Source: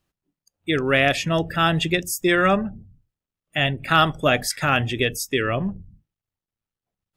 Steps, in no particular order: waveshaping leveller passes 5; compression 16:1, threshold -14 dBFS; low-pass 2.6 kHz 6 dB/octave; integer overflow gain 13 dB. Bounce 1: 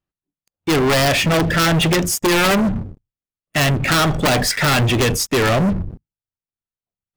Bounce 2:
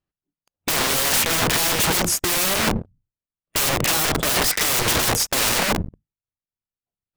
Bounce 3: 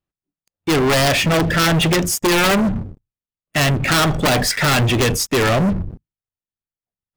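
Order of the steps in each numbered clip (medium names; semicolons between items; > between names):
compression > low-pass > integer overflow > waveshaping leveller; waveshaping leveller > low-pass > integer overflow > compression; low-pass > compression > integer overflow > waveshaping leveller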